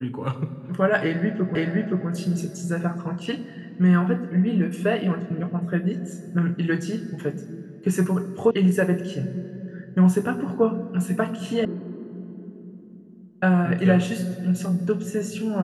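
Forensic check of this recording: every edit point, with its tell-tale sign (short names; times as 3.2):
1.55 repeat of the last 0.52 s
8.51 sound cut off
11.65 sound cut off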